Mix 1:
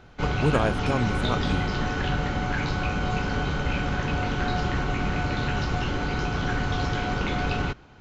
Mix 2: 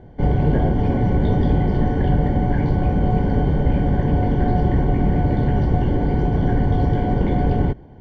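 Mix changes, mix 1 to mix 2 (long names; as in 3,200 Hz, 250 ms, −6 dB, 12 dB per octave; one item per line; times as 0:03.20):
background +10.0 dB
master: add moving average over 34 samples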